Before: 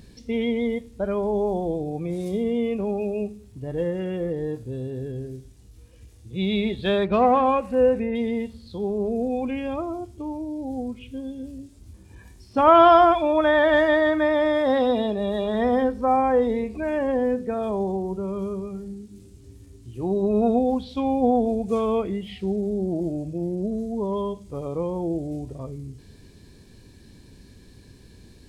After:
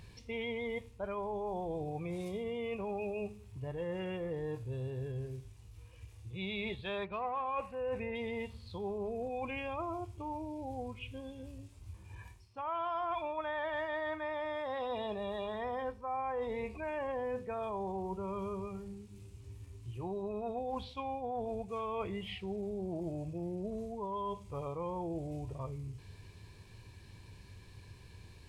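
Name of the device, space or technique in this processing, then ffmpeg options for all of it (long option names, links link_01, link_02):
compression on the reversed sound: -af "equalizer=frequency=100:width_type=o:width=0.67:gain=9,equalizer=frequency=250:width_type=o:width=0.67:gain=-9,equalizer=frequency=1000:width_type=o:width=0.67:gain=10,equalizer=frequency=2500:width_type=o:width=0.67:gain=9,areverse,acompressor=threshold=-27dB:ratio=8,areverse,volume=-7.5dB"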